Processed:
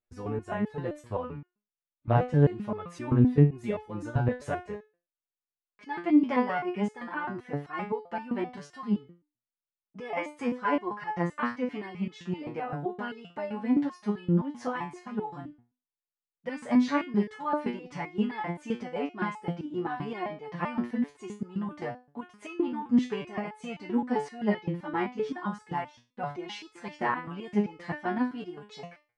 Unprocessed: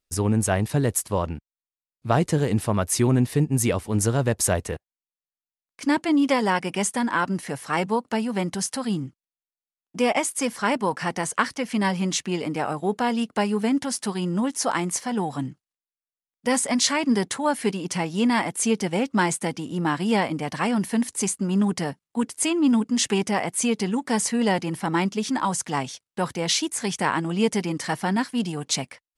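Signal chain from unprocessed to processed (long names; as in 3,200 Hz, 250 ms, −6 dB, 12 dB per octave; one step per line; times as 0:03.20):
low-pass filter 2,000 Hz 12 dB per octave
step-sequenced resonator 7.7 Hz 120–430 Hz
level +6 dB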